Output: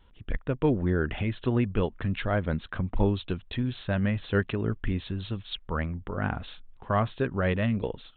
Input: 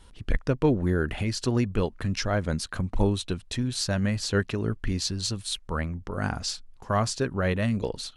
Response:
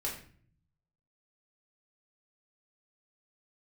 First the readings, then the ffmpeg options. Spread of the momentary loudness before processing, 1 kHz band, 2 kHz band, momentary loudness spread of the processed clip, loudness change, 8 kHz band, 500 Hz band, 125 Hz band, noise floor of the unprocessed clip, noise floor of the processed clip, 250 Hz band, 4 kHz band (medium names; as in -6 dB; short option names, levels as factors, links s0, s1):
6 LU, -0.5 dB, -1.0 dB, 8 LU, -1.5 dB, under -40 dB, -1.0 dB, -1.0 dB, -52 dBFS, -55 dBFS, -1.0 dB, -8.5 dB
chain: -af "dynaudnorm=f=220:g=5:m=2,aresample=8000,aresample=44100,volume=0.473"